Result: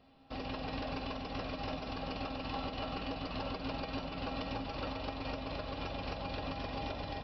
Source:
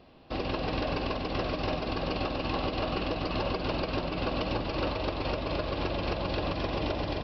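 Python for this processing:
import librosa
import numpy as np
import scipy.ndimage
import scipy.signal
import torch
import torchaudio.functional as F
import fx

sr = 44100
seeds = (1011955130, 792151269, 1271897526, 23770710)

y = fx.peak_eq(x, sr, hz=340.0, db=-8.5, octaves=0.45)
y = fx.comb_fb(y, sr, f0_hz=270.0, decay_s=0.26, harmonics='odd', damping=0.0, mix_pct=80)
y = y * librosa.db_to_amplitude(4.5)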